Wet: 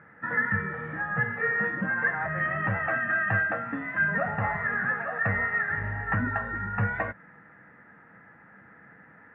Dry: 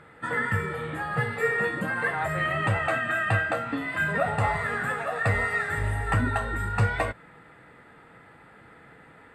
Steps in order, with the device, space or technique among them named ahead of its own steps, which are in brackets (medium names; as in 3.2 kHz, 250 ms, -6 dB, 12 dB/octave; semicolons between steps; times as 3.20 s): bass cabinet (cabinet simulation 75–2100 Hz, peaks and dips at 200 Hz +8 dB, 410 Hz -5 dB, 1.7 kHz +9 dB); trim -4 dB